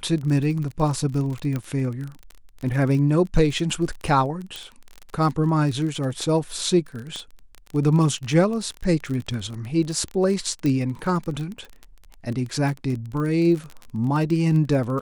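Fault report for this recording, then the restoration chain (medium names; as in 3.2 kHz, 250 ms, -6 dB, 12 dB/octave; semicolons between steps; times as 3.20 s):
crackle 28 per s -28 dBFS
1.56 s: pop -15 dBFS
4.56 s: pop
7.16 s: pop -20 dBFS
10.66 s: pop -14 dBFS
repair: de-click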